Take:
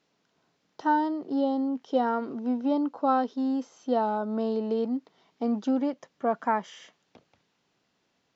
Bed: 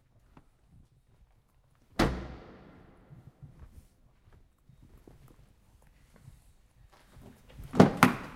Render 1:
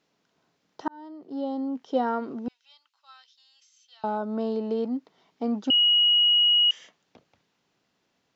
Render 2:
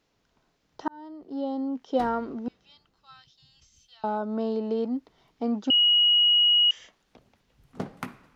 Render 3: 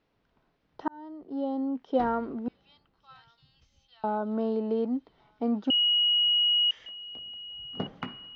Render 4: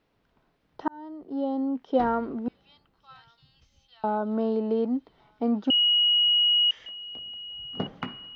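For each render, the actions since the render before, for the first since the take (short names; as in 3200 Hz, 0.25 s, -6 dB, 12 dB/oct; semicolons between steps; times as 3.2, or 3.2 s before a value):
0.88–1.83 fade in; 2.48–4.04 ladder high-pass 2100 Hz, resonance 20%; 5.7–6.71 bleep 2900 Hz -16.5 dBFS
add bed -15 dB
air absorption 230 m; thin delay 1.159 s, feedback 59%, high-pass 3000 Hz, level -15 dB
gain +2.5 dB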